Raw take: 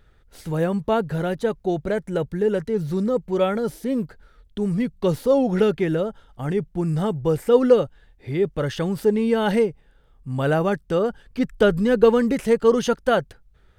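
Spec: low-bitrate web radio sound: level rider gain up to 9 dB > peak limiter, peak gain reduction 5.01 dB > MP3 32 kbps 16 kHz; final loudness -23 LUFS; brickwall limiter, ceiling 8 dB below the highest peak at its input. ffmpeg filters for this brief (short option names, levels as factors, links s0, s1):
-af "alimiter=limit=0.251:level=0:latency=1,dynaudnorm=m=2.82,alimiter=limit=0.141:level=0:latency=1,volume=1.58" -ar 16000 -c:a libmp3lame -b:a 32k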